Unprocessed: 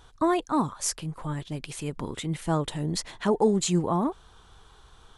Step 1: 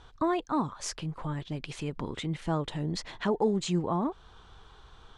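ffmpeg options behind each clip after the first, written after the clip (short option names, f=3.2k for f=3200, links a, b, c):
-filter_complex "[0:a]lowpass=4.9k,asplit=2[a][b];[b]acompressor=threshold=-33dB:ratio=6,volume=2dB[c];[a][c]amix=inputs=2:normalize=0,volume=-6.5dB"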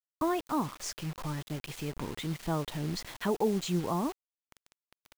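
-af "acrusher=bits=6:mix=0:aa=0.000001,volume=-2dB"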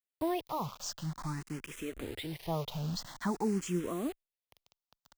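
-filter_complex "[0:a]asplit=2[a][b];[b]afreqshift=0.49[c];[a][c]amix=inputs=2:normalize=1"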